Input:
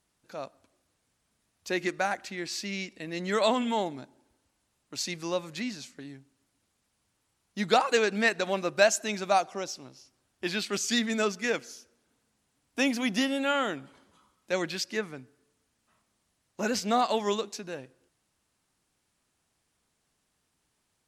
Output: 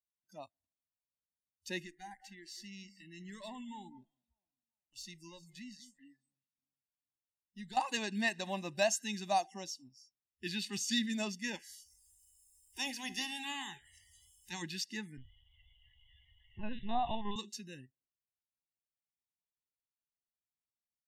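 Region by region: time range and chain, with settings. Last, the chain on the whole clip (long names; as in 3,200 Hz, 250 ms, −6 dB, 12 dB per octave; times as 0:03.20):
0:01.82–0:07.77: downward compressor 1.5 to 1, threshold −51 dBFS + tube saturation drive 30 dB, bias 0.35 + delay that swaps between a low-pass and a high-pass 197 ms, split 1,900 Hz, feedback 56%, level −11.5 dB
0:11.55–0:14.61: ceiling on every frequency bin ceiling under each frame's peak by 18 dB + upward compression, threshold −33 dBFS + tuned comb filter 85 Hz, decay 0.72 s, mix 50%
0:15.17–0:17.36: spectrum averaged block by block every 50 ms + bit-depth reduction 8 bits, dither triangular + linear-prediction vocoder at 8 kHz pitch kept
whole clip: noise reduction from a noise print of the clip's start 27 dB; parametric band 1,400 Hz −9.5 dB 0.98 octaves; comb filter 1.1 ms, depth 81%; level −7.5 dB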